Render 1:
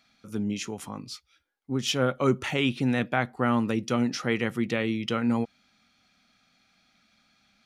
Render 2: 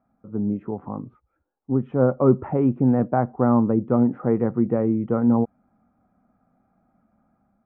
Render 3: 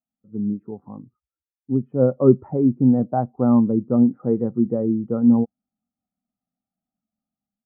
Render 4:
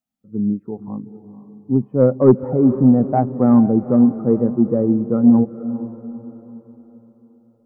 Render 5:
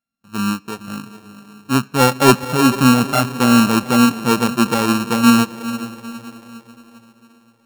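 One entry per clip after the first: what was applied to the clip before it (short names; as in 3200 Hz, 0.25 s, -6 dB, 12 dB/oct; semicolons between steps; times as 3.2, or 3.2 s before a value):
inverse Chebyshev low-pass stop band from 4400 Hz, stop band 70 dB; AGC gain up to 4 dB; gain +3 dB
spectral expander 1.5:1; gain +3.5 dB
soft clip -5 dBFS, distortion -22 dB; diffused feedback echo 0.466 s, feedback 44%, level -13 dB; gain +4.5 dB
sample sorter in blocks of 32 samples; on a send at -21 dB: reverb RT60 1.0 s, pre-delay 3 ms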